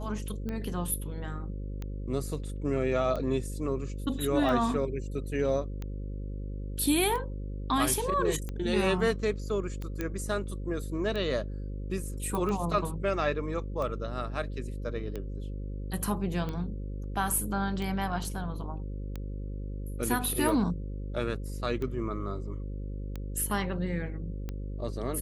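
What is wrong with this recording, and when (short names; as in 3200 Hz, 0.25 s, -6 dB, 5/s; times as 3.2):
buzz 50 Hz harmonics 11 -36 dBFS
tick 45 rpm -23 dBFS
10.01 pop -18 dBFS
12.35 pop -20 dBFS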